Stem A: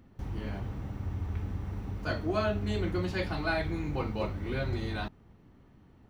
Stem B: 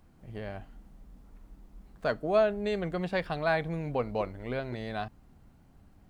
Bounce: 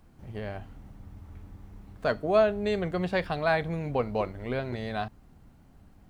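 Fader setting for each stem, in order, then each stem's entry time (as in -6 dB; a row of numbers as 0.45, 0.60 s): -13.0, +2.5 dB; 0.00, 0.00 s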